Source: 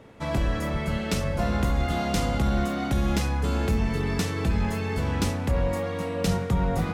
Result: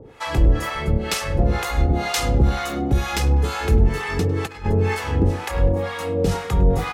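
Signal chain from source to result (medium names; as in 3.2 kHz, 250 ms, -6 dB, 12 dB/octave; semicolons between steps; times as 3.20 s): comb 2.4 ms, depth 47%; 4.46–4.95 s: compressor with a negative ratio -26 dBFS, ratio -0.5; harmonic tremolo 2.1 Hz, depth 100%, crossover 660 Hz; tape echo 101 ms, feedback 47%, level -16 dB, low-pass 3 kHz; trim +9 dB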